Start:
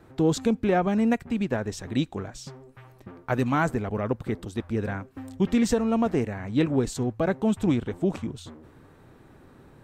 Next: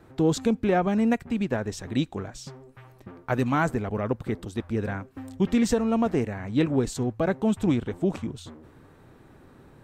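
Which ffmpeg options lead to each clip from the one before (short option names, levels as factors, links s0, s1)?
-af anull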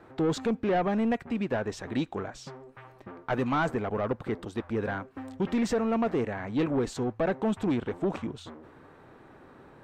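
-filter_complex "[0:a]asplit=2[s0][s1];[s1]highpass=f=720:p=1,volume=5.01,asoftclip=type=tanh:threshold=0.266[s2];[s0][s2]amix=inputs=2:normalize=0,lowpass=f=1400:p=1,volume=0.501,asoftclip=type=tanh:threshold=0.126,volume=0.794"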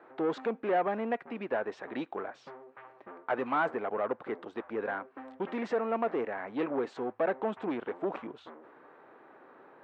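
-af "highpass=400,lowpass=2200"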